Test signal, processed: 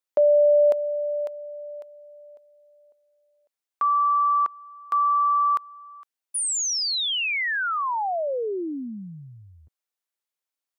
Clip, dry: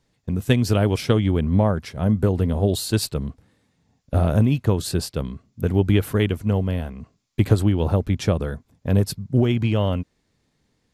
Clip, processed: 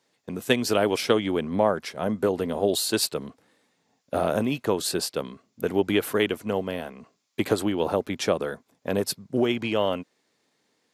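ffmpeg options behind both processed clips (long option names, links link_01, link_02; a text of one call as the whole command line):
ffmpeg -i in.wav -af "highpass=350,volume=2dB" out.wav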